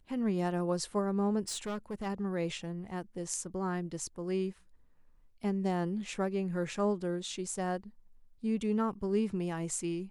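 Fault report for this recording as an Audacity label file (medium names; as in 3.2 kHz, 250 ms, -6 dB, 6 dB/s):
1.480000	2.070000	clipped -33 dBFS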